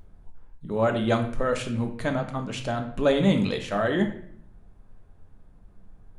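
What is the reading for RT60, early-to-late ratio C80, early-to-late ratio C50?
0.65 s, 12.0 dB, 9.0 dB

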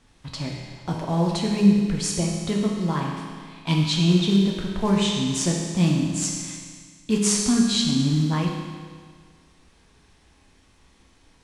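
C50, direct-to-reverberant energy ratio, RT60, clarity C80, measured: 1.5 dB, -1.5 dB, 1.8 s, 3.0 dB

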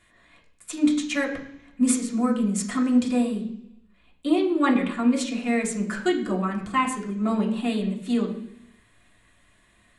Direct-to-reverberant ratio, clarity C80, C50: -3.0 dB, 12.0 dB, 9.5 dB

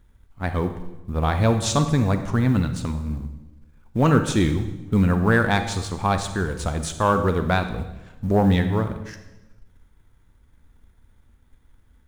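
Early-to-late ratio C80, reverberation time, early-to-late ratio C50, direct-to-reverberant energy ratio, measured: 11.5 dB, 1.0 s, 9.0 dB, 8.0 dB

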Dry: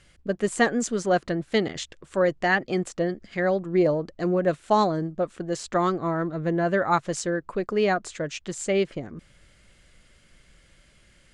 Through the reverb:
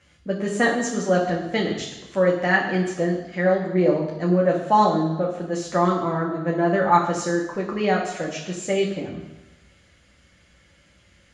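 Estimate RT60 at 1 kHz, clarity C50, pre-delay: 1.1 s, 6.0 dB, 3 ms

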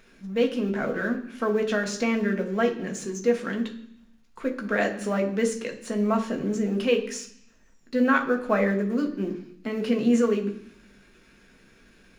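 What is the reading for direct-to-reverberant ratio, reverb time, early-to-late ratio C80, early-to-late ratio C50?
2.0 dB, 0.70 s, 14.0 dB, 11.0 dB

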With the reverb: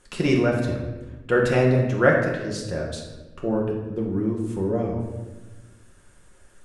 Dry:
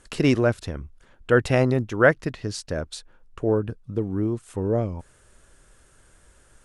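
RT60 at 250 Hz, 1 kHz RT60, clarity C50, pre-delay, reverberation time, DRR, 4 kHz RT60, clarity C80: 1.8 s, 1.0 s, 3.5 dB, 6 ms, 1.2 s, -2.5 dB, 0.80 s, 6.0 dB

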